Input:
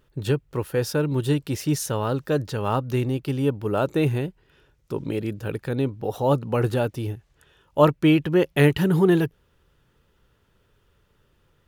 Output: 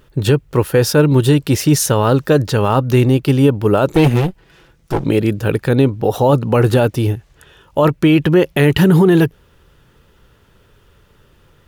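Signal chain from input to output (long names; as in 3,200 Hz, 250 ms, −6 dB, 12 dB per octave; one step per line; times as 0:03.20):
0:03.92–0:05.04: lower of the sound and its delayed copy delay 6 ms
boost into a limiter +15 dB
level −2.5 dB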